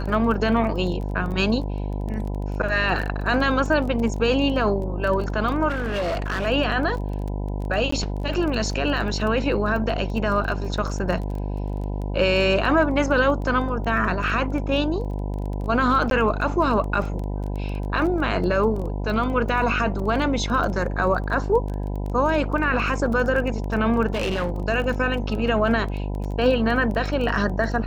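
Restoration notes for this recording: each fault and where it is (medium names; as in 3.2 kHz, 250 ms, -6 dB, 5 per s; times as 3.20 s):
buzz 50 Hz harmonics 20 -27 dBFS
crackle 16 per s -29 dBFS
5.68–6.47 s: clipped -21.5 dBFS
7.91–7.92 s: dropout 14 ms
16.10–16.11 s: dropout 12 ms
24.14–24.51 s: clipped -20.5 dBFS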